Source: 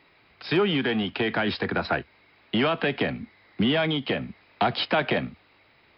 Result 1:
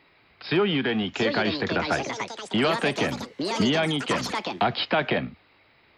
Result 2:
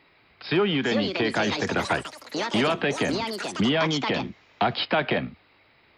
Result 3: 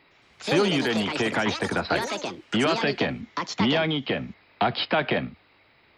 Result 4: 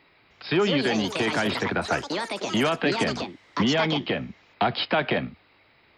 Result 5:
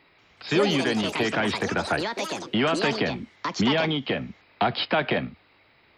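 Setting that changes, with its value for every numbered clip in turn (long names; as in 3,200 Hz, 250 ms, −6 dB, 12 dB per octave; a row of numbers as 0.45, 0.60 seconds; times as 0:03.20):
delay with pitch and tempo change per echo, delay time: 851, 548, 110, 307, 185 milliseconds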